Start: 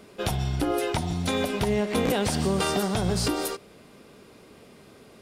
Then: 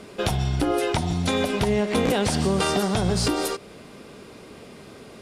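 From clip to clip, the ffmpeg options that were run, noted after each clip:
ffmpeg -i in.wav -filter_complex "[0:a]lowpass=11000,asplit=2[link_01][link_02];[link_02]acompressor=threshold=-33dB:ratio=6,volume=2dB[link_03];[link_01][link_03]amix=inputs=2:normalize=0" out.wav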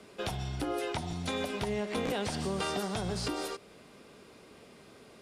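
ffmpeg -i in.wav -filter_complex "[0:a]lowshelf=frequency=370:gain=-4,acrossover=split=110|640|5300[link_01][link_02][link_03][link_04];[link_04]alimiter=level_in=4dB:limit=-24dB:level=0:latency=1:release=92,volume=-4dB[link_05];[link_01][link_02][link_03][link_05]amix=inputs=4:normalize=0,volume=-9dB" out.wav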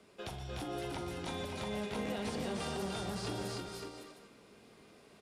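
ffmpeg -i in.wav -filter_complex "[0:a]asplit=2[link_01][link_02];[link_02]adelay=43,volume=-12dB[link_03];[link_01][link_03]amix=inputs=2:normalize=0,asplit=2[link_04][link_05];[link_05]aecho=0:1:120|298|323|558|712:0.224|0.668|0.631|0.422|0.2[link_06];[link_04][link_06]amix=inputs=2:normalize=0,volume=-8.5dB" out.wav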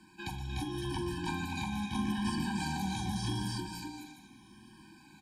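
ffmpeg -i in.wav -af "afftfilt=real='re*pow(10,7/40*sin(2*PI*(1.3*log(max(b,1)*sr/1024/100)/log(2)-(-0.82)*(pts-256)/sr)))':imag='im*pow(10,7/40*sin(2*PI*(1.3*log(max(b,1)*sr/1024/100)/log(2)-(-0.82)*(pts-256)/sr)))':win_size=1024:overlap=0.75,afftfilt=real='re*eq(mod(floor(b*sr/1024/370),2),0)':imag='im*eq(mod(floor(b*sr/1024/370),2),0)':win_size=1024:overlap=0.75,volume=6dB" out.wav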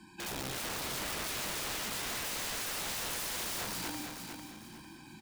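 ffmpeg -i in.wav -af "aeval=exprs='(mod(70.8*val(0)+1,2)-1)/70.8':channel_layout=same,aecho=1:1:450|900|1350|1800:0.473|0.151|0.0485|0.0155,volume=3.5dB" out.wav

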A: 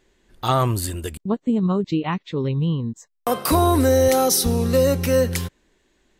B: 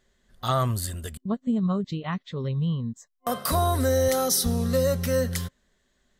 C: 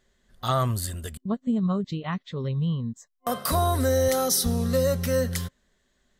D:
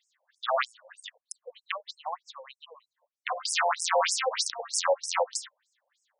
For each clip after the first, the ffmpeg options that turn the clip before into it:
ffmpeg -i in.wav -af "superequalizer=6b=0.282:7b=0.562:9b=0.562:12b=0.501,volume=-4dB" out.wav
ffmpeg -i in.wav -af anull out.wav
ffmpeg -i in.wav -af "aeval=exprs='(mod(6.68*val(0)+1,2)-1)/6.68':channel_layout=same,afftfilt=real='re*between(b*sr/1024,650*pow(7300/650,0.5+0.5*sin(2*PI*3.2*pts/sr))/1.41,650*pow(7300/650,0.5+0.5*sin(2*PI*3.2*pts/sr))*1.41)':imag='im*between(b*sr/1024,650*pow(7300/650,0.5+0.5*sin(2*PI*3.2*pts/sr))/1.41,650*pow(7300/650,0.5+0.5*sin(2*PI*3.2*pts/sr))*1.41)':win_size=1024:overlap=0.75,volume=4.5dB" out.wav

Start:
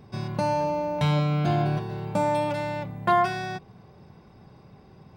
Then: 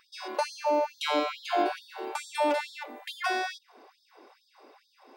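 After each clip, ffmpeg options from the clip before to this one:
ffmpeg -i in.wav -af "afftfilt=real='re*gte(b*sr/1024,230*pow(3400/230,0.5+0.5*sin(2*PI*2.3*pts/sr)))':imag='im*gte(b*sr/1024,230*pow(3400/230,0.5+0.5*sin(2*PI*2.3*pts/sr)))':win_size=1024:overlap=0.75,volume=3dB" out.wav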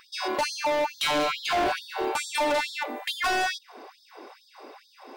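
ffmpeg -i in.wav -filter_complex "[0:a]asplit=2[link_01][link_02];[link_02]alimiter=limit=-22.5dB:level=0:latency=1,volume=1.5dB[link_03];[link_01][link_03]amix=inputs=2:normalize=0,volume=24.5dB,asoftclip=hard,volume=-24.5dB,volume=2.5dB" out.wav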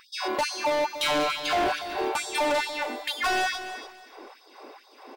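ffmpeg -i in.wav -af "aecho=1:1:287|574|861:0.266|0.0612|0.0141" out.wav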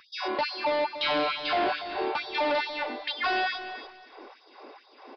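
ffmpeg -i in.wav -filter_complex "[0:a]acrossover=split=140[link_01][link_02];[link_01]acompressor=threshold=-56dB:ratio=6[link_03];[link_03][link_02]amix=inputs=2:normalize=0,aresample=11025,aresample=44100,volume=-1.5dB" out.wav

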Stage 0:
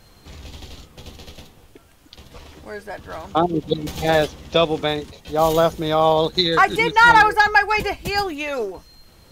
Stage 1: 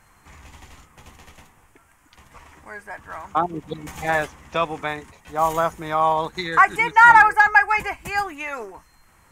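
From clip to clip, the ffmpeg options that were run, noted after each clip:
ffmpeg -i in.wav -af "equalizer=frequency=500:width_type=o:width=1:gain=-5,equalizer=frequency=1000:width_type=o:width=1:gain=10,equalizer=frequency=2000:width_type=o:width=1:gain=10,equalizer=frequency=4000:width_type=o:width=1:gain=-11,equalizer=frequency=8000:width_type=o:width=1:gain=9,volume=-8dB" out.wav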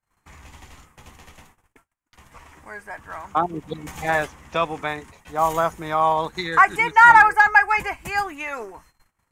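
ffmpeg -i in.wav -af "agate=range=-33dB:threshold=-52dB:ratio=16:detection=peak" out.wav

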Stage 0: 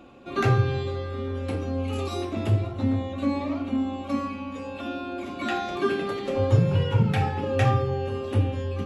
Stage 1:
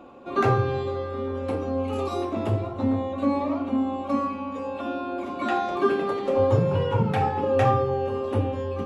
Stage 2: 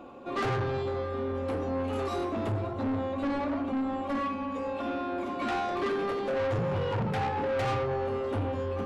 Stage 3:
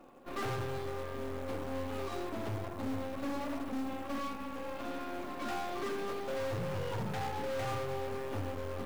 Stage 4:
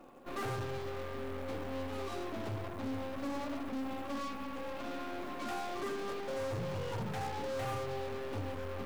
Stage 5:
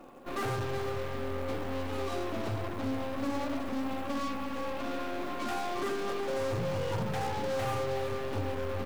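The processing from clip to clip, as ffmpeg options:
ffmpeg -i in.wav -af "equalizer=frequency=250:width_type=o:width=1:gain=4,equalizer=frequency=500:width_type=o:width=1:gain=7,equalizer=frequency=1000:width_type=o:width=1:gain=10,volume=-4.5dB" out.wav
ffmpeg -i in.wav -af "asoftclip=type=tanh:threshold=-26.5dB" out.wav
ffmpeg -i in.wav -af "aeval=exprs='0.0501*(cos(1*acos(clip(val(0)/0.0501,-1,1)))-cos(1*PI/2))+0.00501*(cos(3*acos(clip(val(0)/0.0501,-1,1)))-cos(3*PI/2))+0.0126*(cos(4*acos(clip(val(0)/0.0501,-1,1)))-cos(4*PI/2))':channel_layout=same,acrusher=bits=5:mode=log:mix=0:aa=0.000001,volume=-7.5dB" out.wav
ffmpeg -i in.wav -af "volume=35.5dB,asoftclip=hard,volume=-35.5dB,volume=1dB" out.wav
ffmpeg -i in.wav -af "aecho=1:1:369:0.335,volume=4.5dB" out.wav

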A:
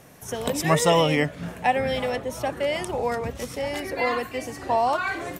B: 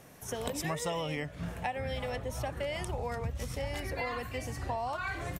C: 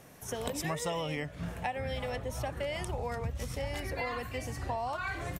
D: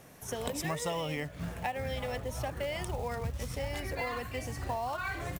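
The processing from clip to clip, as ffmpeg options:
ffmpeg -i in.wav -filter_complex "[0:a]asplit=2[link_01][link_02];[link_02]adelay=699.7,volume=-28dB,highshelf=frequency=4000:gain=-15.7[link_03];[link_01][link_03]amix=inputs=2:normalize=0,asubboost=boost=8:cutoff=110,acompressor=threshold=-27dB:ratio=6,volume=-4.5dB" out.wav
ffmpeg -i in.wav -af anull out.wav
ffmpeg -i in.wav -af "acrusher=bits=5:mode=log:mix=0:aa=0.000001" out.wav

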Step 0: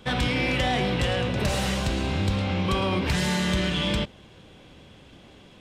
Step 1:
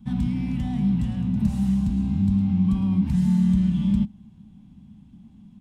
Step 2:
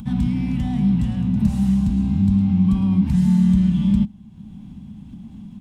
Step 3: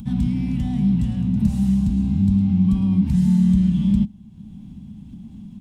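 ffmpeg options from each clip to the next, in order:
ffmpeg -i in.wav -af "firequalizer=gain_entry='entry(130,0);entry(210,12);entry(320,-13);entry(470,-30);entry(820,-12);entry(1400,-22);entry(2600,-21);entry(4500,-20);entry(6500,-16);entry(9800,-12)':delay=0.05:min_phase=1" out.wav
ffmpeg -i in.wav -af "acompressor=mode=upward:threshold=-33dB:ratio=2.5,volume=4dB" out.wav
ffmpeg -i in.wav -af "equalizer=frequency=1200:width_type=o:width=2.4:gain=-6" out.wav

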